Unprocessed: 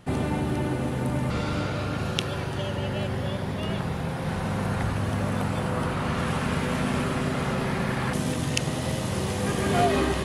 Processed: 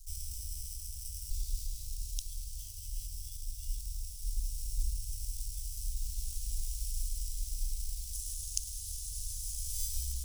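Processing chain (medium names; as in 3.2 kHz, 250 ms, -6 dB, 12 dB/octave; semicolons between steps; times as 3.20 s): crackle 430 per s -39 dBFS; tilt shelf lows +9 dB, about 640 Hz; in parallel at -12 dB: sample-and-hold 16×; on the sum: inverse Chebyshev band-stop 170–1200 Hz, stop band 80 dB; trim +8 dB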